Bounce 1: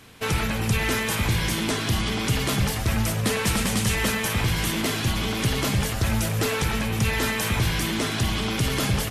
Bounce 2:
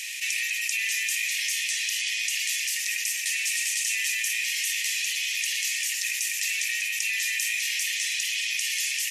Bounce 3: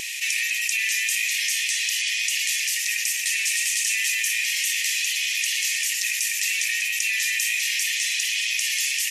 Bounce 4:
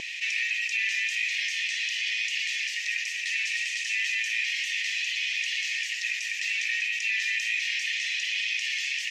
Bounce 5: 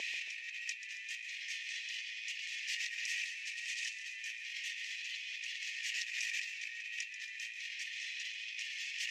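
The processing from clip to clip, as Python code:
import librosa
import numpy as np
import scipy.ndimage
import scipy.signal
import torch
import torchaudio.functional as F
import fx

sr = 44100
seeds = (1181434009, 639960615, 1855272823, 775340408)

y1 = scipy.signal.sosfilt(scipy.signal.cheby1(6, 9, 1800.0, 'highpass', fs=sr, output='sos'), x)
y1 = fx.env_flatten(y1, sr, amount_pct=70)
y1 = y1 * 10.0 ** (3.0 / 20.0)
y2 = fx.wow_flutter(y1, sr, seeds[0], rate_hz=2.1, depth_cents=15.0)
y2 = y2 * 10.0 ** (3.5 / 20.0)
y3 = fx.air_absorb(y2, sr, metres=190.0)
y4 = scipy.signal.sosfilt(scipy.signal.butter(2, 420.0, 'highpass', fs=sr, output='sos'), y3)
y4 = fx.over_compress(y4, sr, threshold_db=-33.0, ratio=-0.5)
y4 = fx.echo_feedback(y4, sr, ms=138, feedback_pct=47, wet_db=-12.0)
y4 = y4 * 10.0 ** (-8.5 / 20.0)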